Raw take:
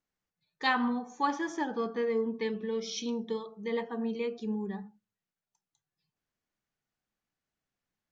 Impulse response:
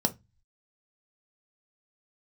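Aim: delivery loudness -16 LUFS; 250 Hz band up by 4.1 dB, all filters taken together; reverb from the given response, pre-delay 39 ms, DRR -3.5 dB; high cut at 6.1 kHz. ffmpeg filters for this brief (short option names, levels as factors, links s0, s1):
-filter_complex "[0:a]lowpass=6100,equalizer=f=250:t=o:g=4.5,asplit=2[s0][s1];[1:a]atrim=start_sample=2205,adelay=39[s2];[s1][s2]afir=irnorm=-1:irlink=0,volume=0.596[s3];[s0][s3]amix=inputs=2:normalize=0,volume=1.58"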